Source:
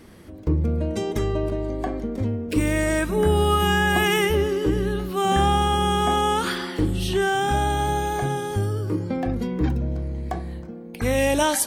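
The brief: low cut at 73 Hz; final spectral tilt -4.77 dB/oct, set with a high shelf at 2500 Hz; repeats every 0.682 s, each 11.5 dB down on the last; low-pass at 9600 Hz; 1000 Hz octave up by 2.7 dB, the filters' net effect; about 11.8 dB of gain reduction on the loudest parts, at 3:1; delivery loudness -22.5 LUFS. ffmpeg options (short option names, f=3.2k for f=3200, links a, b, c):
-af "highpass=73,lowpass=9.6k,equalizer=f=1k:t=o:g=3,highshelf=f=2.5k:g=3.5,acompressor=threshold=-31dB:ratio=3,aecho=1:1:682|1364|2046:0.266|0.0718|0.0194,volume=9dB"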